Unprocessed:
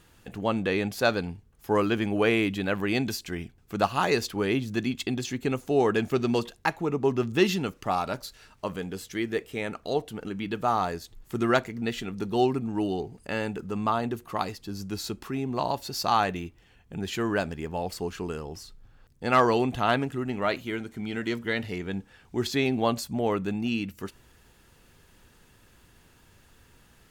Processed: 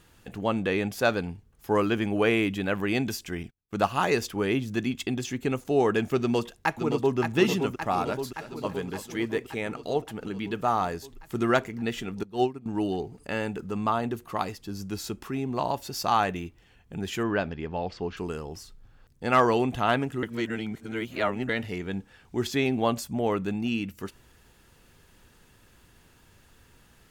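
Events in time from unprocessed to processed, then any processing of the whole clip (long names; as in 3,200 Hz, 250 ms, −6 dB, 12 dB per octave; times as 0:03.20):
0:03.43–0:05.65: noise gate −48 dBFS, range −30 dB
0:06.20–0:07.18: delay throw 570 ms, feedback 70%, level −6 dB
0:08.06–0:08.69: delay throw 330 ms, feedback 30%, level −14 dB
0:12.23–0:12.66: expander for the loud parts 2.5 to 1, over −30 dBFS
0:17.23–0:18.17: low-pass filter 4,700 Hz 24 dB per octave
0:20.23–0:21.49: reverse
whole clip: dynamic equaliser 4,200 Hz, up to −7 dB, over −54 dBFS, Q 5.6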